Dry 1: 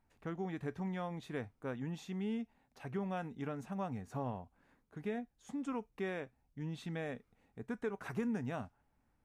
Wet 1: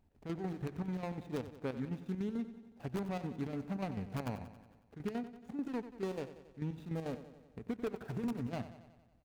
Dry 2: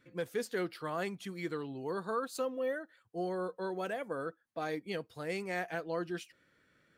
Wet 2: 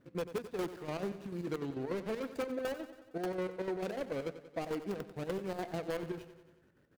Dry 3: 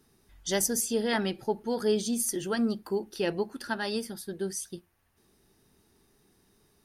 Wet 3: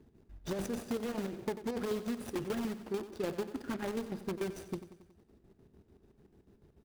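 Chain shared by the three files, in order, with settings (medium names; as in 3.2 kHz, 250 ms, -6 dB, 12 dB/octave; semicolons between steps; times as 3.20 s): median filter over 41 samples; square tremolo 6.8 Hz, depth 65%, duty 60%; in parallel at -6 dB: integer overflow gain 31 dB; on the sum: peaking EQ 68 Hz +7 dB 0.56 oct; compression, threshold -36 dBFS; bass shelf 130 Hz -3.5 dB; on a send: feedback delay 92 ms, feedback 60%, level -13 dB; on the sum: trim +3.5 dB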